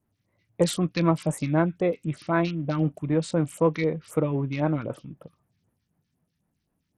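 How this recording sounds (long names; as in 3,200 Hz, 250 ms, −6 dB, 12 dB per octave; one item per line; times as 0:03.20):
phaser sweep stages 2, 3.9 Hz, lowest notch 590–4,600 Hz
SBC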